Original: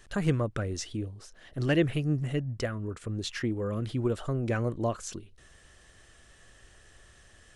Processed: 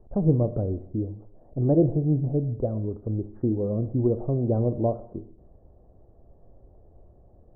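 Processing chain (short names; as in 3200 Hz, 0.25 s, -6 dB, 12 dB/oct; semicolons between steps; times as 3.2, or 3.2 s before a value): steep low-pass 780 Hz 36 dB/oct; Schroeder reverb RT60 0.7 s, combs from 25 ms, DRR 11.5 dB; gain +5.5 dB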